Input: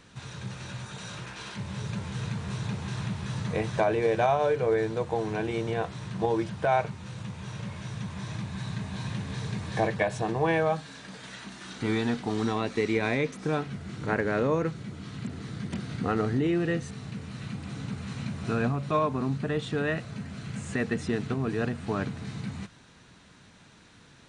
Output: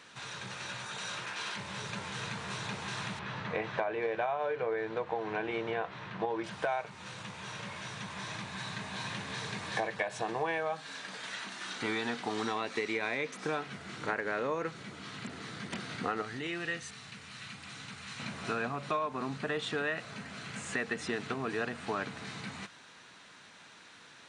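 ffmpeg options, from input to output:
-filter_complex "[0:a]asettb=1/sr,asplit=3[a][b][c];[a]atrim=end=3.194[d];[b]atrim=start=3.19:end=6.44,asetpts=PTS-STARTPTS,afade=t=in:d=0.004:c=qsin,afade=t=out:st=3.246:d=0.004:c=qsin,lowpass=2.8k[e];[c]atrim=start=6.436[f];[d][e]acrossfade=d=0.004:c1=hsin:c2=qsin[g];[g][f]acrossfade=d=0.004:c1=qsin:c2=hsin,asettb=1/sr,asplit=3[h][i][j];[h]atrim=end=16.224[k];[i]atrim=start=16.22:end=18.2,asetpts=PTS-STARTPTS,afade=t=in:d=0.004:c=qsin,afade=t=out:st=1.976:d=0.004:c=qsin,equalizer=f=390:w=0.39:g=-10[l];[j]atrim=start=18.196[m];[k][l]acrossfade=d=0.004:c1=hsin:c2=qsin[n];[n][m]acrossfade=d=0.004:c1=qsin:c2=hsin,highpass=f=1.1k:p=1,highshelf=f=4k:g=-6.5,acompressor=threshold=-36dB:ratio=6,volume=6.5dB"

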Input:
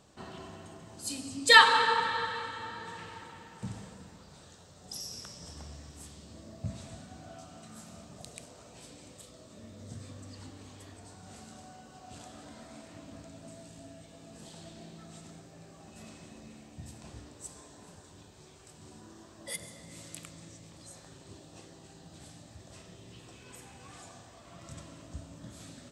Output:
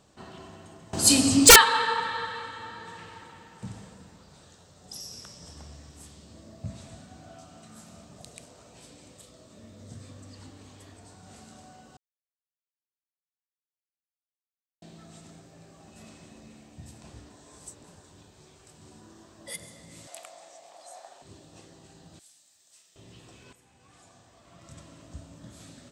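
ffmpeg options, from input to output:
-filter_complex "[0:a]asettb=1/sr,asplit=3[a][b][c];[a]atrim=end=0.934[d];[b]atrim=start=0.93:end=1.56,asetpts=PTS-STARTPTS,afade=t=in:d=0.004:c=qsin,afade=t=out:st=0.626:d=0.004:c=qsin,aeval=exprs='0.531*sin(PI/2*5.62*val(0)/0.531)':c=same[e];[c]atrim=start=1.556[f];[d][e]acrossfade=d=0.004:c1=hsin:c2=qsin[g];[g][f]acrossfade=d=0.004:c1=qsin:c2=hsin,asettb=1/sr,asplit=3[h][i][j];[h]atrim=end=20.074[k];[i]atrim=start=20.07:end=21.22,asetpts=PTS-STARTPTS,afade=t=in:d=0.004:c=qsin,afade=t=out:st=1.146:d=0.004:c=qsin,highpass=f=700:t=q:w=8.1[l];[j]atrim=start=21.216[m];[k][l]acrossfade=d=0.004:c1=hsin:c2=qsin[n];[n][m]acrossfade=d=0.004:c1=qsin:c2=hsin,asettb=1/sr,asplit=3[o][p][q];[o]atrim=end=22.194[r];[p]atrim=start=22.19:end=22.96,asetpts=PTS-STARTPTS,afade=t=in:d=0.004:c=qsin,afade=t=out:st=0.766:d=0.004:c=qsin,aderivative[s];[q]atrim=start=22.956[t];[r][s]acrossfade=d=0.004:c1=hsin:c2=qsin[u];[u][t]acrossfade=d=0.004:c1=qsin:c2=hsin,asplit=6[v][w][x][y][z][aa];[v]atrim=end=11.97,asetpts=PTS-STARTPTS,afade=t=out:st=11.966:d=0.004:c=hsin[ab];[w]atrim=start=11.97:end=14.82,asetpts=PTS-STARTPTS,volume=0[ac];[x]atrim=start=14.82:end=17.302,asetpts=PTS-STARTPTS,afade=t=in:d=0.004:c=hsin[ad];[y]atrim=start=17.298:end=17.842,asetpts=PTS-STARTPTS,areverse[ae];[z]atrim=start=17.838:end=23.53,asetpts=PTS-STARTPTS,afade=t=out:st=5.688:d=0.004:c=hsin:silence=0.223872[af];[aa]atrim=start=23.53,asetpts=PTS-STARTPTS,afade=t=in:d=1.61:silence=0.223872[ag];[ab][ac][ad]concat=n=3:v=0:a=1[ah];[ah][ae]acrossfade=d=0.004:c1=hsin:c2=hsin[ai];[af][ag]concat=n=2:v=0:a=1[aj];[ai][aj]acrossfade=d=0.004:c1=hsin:c2=hsin"

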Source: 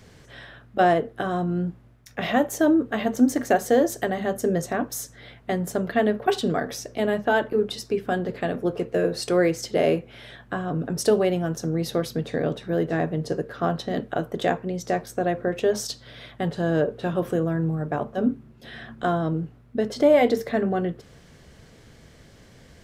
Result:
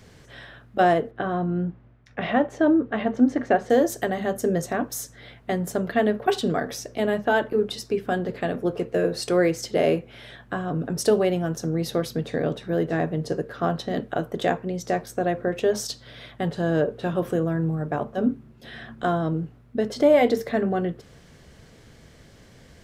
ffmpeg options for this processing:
-filter_complex "[0:a]asettb=1/sr,asplit=3[a][b][c];[a]atrim=end=1.114[d];[b]atrim=start=1.11:end=3.7,asetpts=PTS-STARTPTS,afade=t=in:d=0.004:c=qsin,afade=t=out:st=2.586:d=0.004:c=qsin,lowpass=2.8k[e];[c]atrim=start=3.696[f];[d][e]acrossfade=d=0.004:c1=hsin:c2=qsin[g];[g][f]acrossfade=d=0.004:c1=qsin:c2=hsin"

